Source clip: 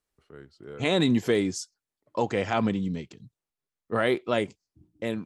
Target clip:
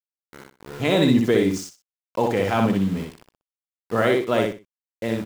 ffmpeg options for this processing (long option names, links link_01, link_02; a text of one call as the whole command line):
ffmpeg -i in.wav -af "highshelf=frequency=2300:gain=-4.5,aeval=exprs='val(0)*gte(abs(val(0)),0.0112)':channel_layout=same,aecho=1:1:62|124|186:0.708|0.17|0.0408,volume=4dB" out.wav